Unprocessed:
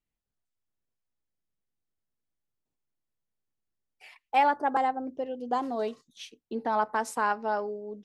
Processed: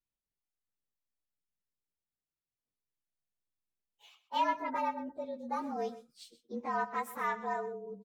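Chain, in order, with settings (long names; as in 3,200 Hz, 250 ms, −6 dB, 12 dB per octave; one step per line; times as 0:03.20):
partials spread apart or drawn together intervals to 111%
tape wow and flutter 22 cents
single-tap delay 125 ms −15.5 dB
level −4.5 dB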